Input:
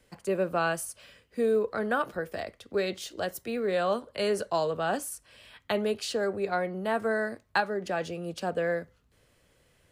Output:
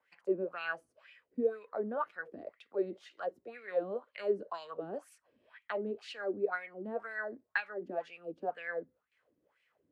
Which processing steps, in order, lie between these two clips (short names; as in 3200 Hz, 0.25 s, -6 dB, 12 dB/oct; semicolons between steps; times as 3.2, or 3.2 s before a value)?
wah 2 Hz 260–2500 Hz, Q 4.6; gain +2 dB